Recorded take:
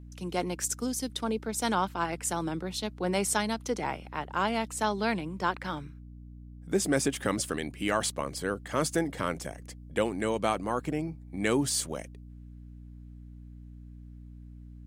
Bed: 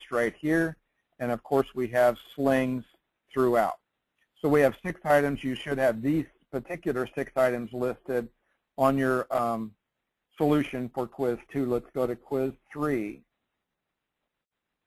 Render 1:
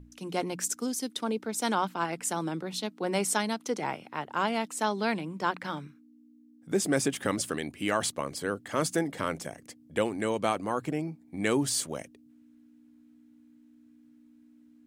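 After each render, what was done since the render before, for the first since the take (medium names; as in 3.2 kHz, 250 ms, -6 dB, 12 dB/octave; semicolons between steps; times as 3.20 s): hum notches 60/120/180 Hz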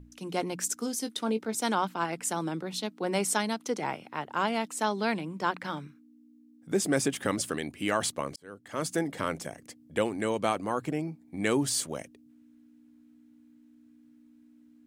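0.77–1.55 s: doubling 18 ms -10 dB; 8.36–9.07 s: fade in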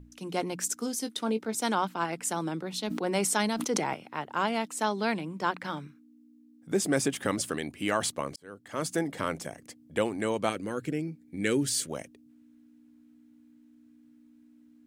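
2.81–3.94 s: decay stretcher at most 32 dB/s; 10.49–11.90 s: high-order bell 860 Hz -12 dB 1.1 oct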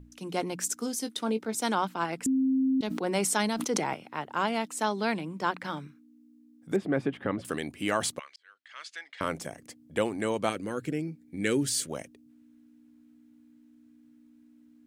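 2.26–2.81 s: bleep 264 Hz -22 dBFS; 6.76–7.45 s: distance through air 460 m; 8.19–9.21 s: Butterworth band-pass 2.7 kHz, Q 0.96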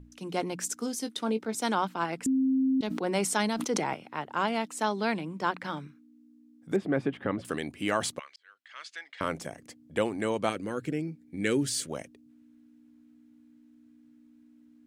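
treble shelf 8.9 kHz -6 dB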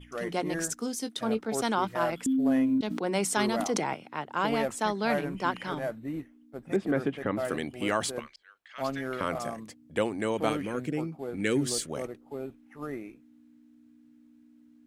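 add bed -9.5 dB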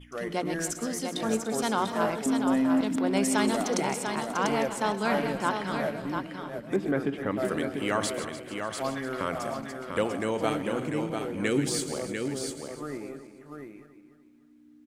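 backward echo that repeats 148 ms, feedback 60%, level -11 dB; multi-tap echo 130/694 ms -18.5/-6 dB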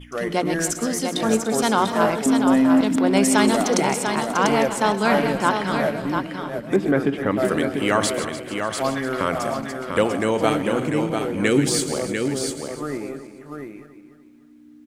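trim +8 dB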